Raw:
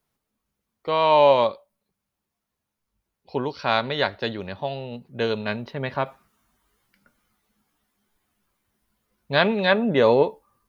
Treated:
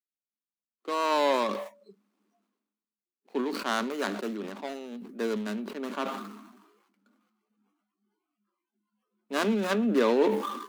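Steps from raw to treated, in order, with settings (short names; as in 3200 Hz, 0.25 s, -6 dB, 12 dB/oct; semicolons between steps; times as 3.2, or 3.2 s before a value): median filter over 25 samples; spectral noise reduction 25 dB; rippled Chebyshev high-pass 200 Hz, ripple 3 dB; band shelf 680 Hz -9 dB 1.1 oct; sustainer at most 49 dB/s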